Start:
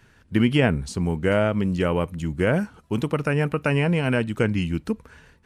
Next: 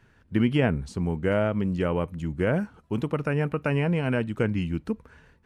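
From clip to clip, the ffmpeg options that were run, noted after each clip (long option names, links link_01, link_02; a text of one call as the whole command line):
ffmpeg -i in.wav -af "highshelf=frequency=3100:gain=-8.5,volume=-3dB" out.wav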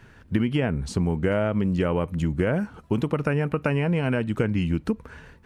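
ffmpeg -i in.wav -af "acompressor=threshold=-29dB:ratio=6,volume=9dB" out.wav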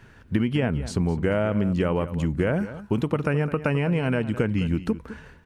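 ffmpeg -i in.wav -filter_complex "[0:a]asplit=2[link_01][link_02];[link_02]adelay=209.9,volume=-14dB,highshelf=frequency=4000:gain=-4.72[link_03];[link_01][link_03]amix=inputs=2:normalize=0" out.wav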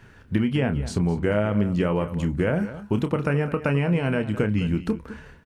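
ffmpeg -i in.wav -filter_complex "[0:a]asplit=2[link_01][link_02];[link_02]adelay=29,volume=-9.5dB[link_03];[link_01][link_03]amix=inputs=2:normalize=0" out.wav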